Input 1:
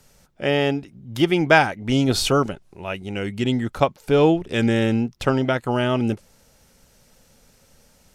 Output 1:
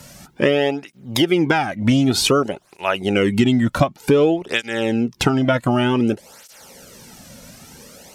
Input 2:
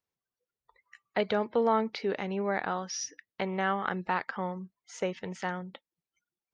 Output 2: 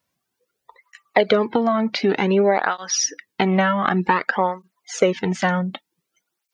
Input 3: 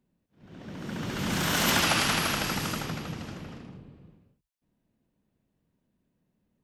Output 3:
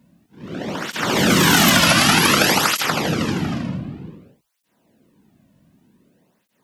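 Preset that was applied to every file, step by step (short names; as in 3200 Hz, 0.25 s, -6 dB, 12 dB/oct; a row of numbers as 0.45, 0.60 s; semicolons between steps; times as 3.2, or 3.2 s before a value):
compressor 16:1, threshold -28 dBFS; tape flanging out of phase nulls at 0.54 Hz, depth 2.6 ms; normalise peaks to -2 dBFS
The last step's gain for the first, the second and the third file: +17.5, +18.0, +20.5 dB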